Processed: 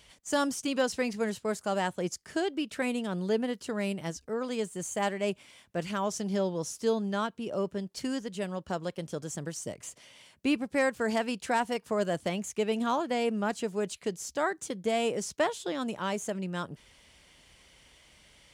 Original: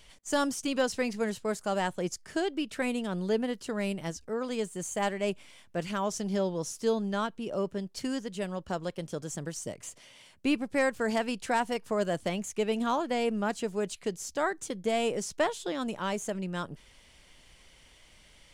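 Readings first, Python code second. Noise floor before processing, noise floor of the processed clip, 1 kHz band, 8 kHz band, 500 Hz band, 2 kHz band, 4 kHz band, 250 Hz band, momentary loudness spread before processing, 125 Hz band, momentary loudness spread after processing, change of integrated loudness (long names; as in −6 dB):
−58 dBFS, −63 dBFS, 0.0 dB, 0.0 dB, 0.0 dB, 0.0 dB, 0.0 dB, 0.0 dB, 8 LU, 0.0 dB, 8 LU, 0.0 dB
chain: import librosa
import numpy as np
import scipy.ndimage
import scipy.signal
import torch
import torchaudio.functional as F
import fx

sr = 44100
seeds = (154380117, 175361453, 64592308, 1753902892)

y = scipy.signal.sosfilt(scipy.signal.butter(2, 49.0, 'highpass', fs=sr, output='sos'), x)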